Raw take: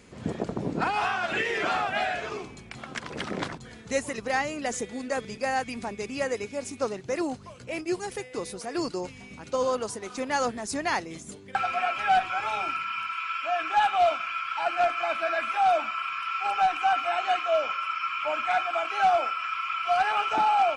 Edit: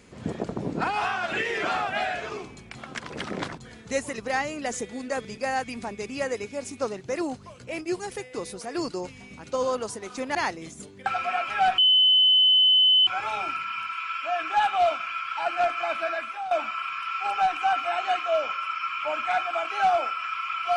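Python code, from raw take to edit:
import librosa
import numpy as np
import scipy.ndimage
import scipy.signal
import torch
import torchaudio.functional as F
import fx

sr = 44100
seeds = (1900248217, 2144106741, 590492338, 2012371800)

y = fx.edit(x, sr, fx.cut(start_s=10.35, length_s=0.49),
    fx.insert_tone(at_s=12.27, length_s=1.29, hz=3030.0, db=-15.0),
    fx.fade_out_to(start_s=15.23, length_s=0.48, floor_db=-15.5), tone=tone)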